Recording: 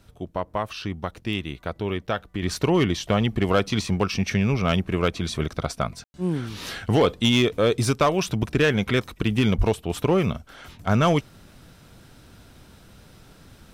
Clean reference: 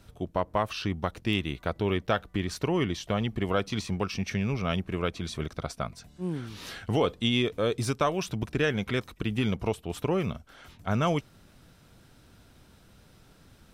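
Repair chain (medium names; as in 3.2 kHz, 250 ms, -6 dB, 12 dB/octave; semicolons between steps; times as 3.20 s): clip repair -12 dBFS; 9.57–9.69 s: high-pass 140 Hz 24 dB/octave; room tone fill 6.04–6.14 s; trim 0 dB, from 2.42 s -7 dB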